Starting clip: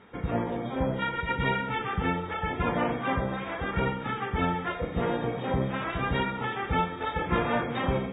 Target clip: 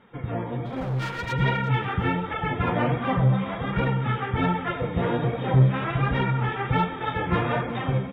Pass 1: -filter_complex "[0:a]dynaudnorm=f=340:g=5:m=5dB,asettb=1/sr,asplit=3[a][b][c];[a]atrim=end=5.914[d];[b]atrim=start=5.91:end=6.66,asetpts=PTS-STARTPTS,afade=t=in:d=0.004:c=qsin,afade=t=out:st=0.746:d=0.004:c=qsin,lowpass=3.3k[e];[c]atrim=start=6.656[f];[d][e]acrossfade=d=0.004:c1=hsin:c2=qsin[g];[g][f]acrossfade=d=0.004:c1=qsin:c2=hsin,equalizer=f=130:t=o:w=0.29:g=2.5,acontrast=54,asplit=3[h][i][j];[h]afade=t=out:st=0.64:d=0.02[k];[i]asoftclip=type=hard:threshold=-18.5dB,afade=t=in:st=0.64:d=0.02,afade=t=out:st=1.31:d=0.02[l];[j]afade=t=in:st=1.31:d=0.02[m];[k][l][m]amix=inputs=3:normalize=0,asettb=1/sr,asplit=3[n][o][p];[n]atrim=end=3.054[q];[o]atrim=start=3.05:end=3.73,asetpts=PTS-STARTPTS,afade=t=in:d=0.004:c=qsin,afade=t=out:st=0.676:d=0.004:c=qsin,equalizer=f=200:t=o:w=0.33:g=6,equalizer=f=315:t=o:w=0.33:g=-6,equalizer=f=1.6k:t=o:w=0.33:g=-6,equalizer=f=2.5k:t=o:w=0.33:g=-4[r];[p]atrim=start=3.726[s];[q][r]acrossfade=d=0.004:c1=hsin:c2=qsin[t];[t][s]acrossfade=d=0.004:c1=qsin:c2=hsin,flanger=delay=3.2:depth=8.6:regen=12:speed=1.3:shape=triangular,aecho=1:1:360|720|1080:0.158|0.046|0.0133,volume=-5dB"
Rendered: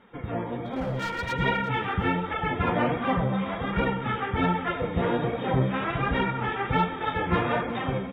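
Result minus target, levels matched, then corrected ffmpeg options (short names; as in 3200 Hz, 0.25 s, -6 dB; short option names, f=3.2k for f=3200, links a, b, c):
125 Hz band -5.0 dB
-filter_complex "[0:a]dynaudnorm=f=340:g=5:m=5dB,asettb=1/sr,asplit=3[a][b][c];[a]atrim=end=5.914[d];[b]atrim=start=5.91:end=6.66,asetpts=PTS-STARTPTS,afade=t=in:d=0.004:c=qsin,afade=t=out:st=0.746:d=0.004:c=qsin,lowpass=3.3k[e];[c]atrim=start=6.656[f];[d][e]acrossfade=d=0.004:c1=hsin:c2=qsin[g];[g][f]acrossfade=d=0.004:c1=qsin:c2=hsin,equalizer=f=130:t=o:w=0.29:g=13.5,acontrast=54,asplit=3[h][i][j];[h]afade=t=out:st=0.64:d=0.02[k];[i]asoftclip=type=hard:threshold=-18.5dB,afade=t=in:st=0.64:d=0.02,afade=t=out:st=1.31:d=0.02[l];[j]afade=t=in:st=1.31:d=0.02[m];[k][l][m]amix=inputs=3:normalize=0,asettb=1/sr,asplit=3[n][o][p];[n]atrim=end=3.054[q];[o]atrim=start=3.05:end=3.73,asetpts=PTS-STARTPTS,afade=t=in:d=0.004:c=qsin,afade=t=out:st=0.676:d=0.004:c=qsin,equalizer=f=200:t=o:w=0.33:g=6,equalizer=f=315:t=o:w=0.33:g=-6,equalizer=f=1.6k:t=o:w=0.33:g=-6,equalizer=f=2.5k:t=o:w=0.33:g=-4[r];[p]atrim=start=3.726[s];[q][r]acrossfade=d=0.004:c1=hsin:c2=qsin[t];[t][s]acrossfade=d=0.004:c1=qsin:c2=hsin,flanger=delay=3.2:depth=8.6:regen=12:speed=1.3:shape=triangular,aecho=1:1:360|720|1080:0.158|0.046|0.0133,volume=-5dB"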